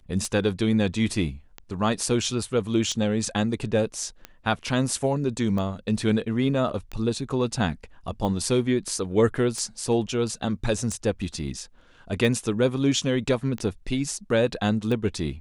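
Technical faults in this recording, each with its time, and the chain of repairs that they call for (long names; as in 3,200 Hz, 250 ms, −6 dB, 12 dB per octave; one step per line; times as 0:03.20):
scratch tick 45 rpm −19 dBFS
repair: click removal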